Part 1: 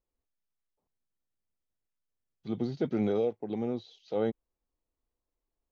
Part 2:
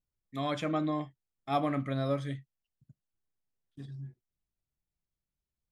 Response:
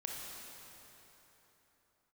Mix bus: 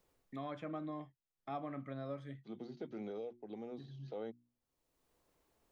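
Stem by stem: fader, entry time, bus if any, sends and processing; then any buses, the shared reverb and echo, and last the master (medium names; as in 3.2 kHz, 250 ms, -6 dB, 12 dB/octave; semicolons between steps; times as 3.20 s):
-5.0 dB, 0.00 s, no send, high-pass 140 Hz; hum notches 60/120/180/240/300/360 Hz; auto duck -10 dB, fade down 0.20 s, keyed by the second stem
-9.5 dB, 0.00 s, no send, low-pass 1.8 kHz 6 dB/octave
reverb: none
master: bass shelf 200 Hz -5 dB; three bands compressed up and down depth 70%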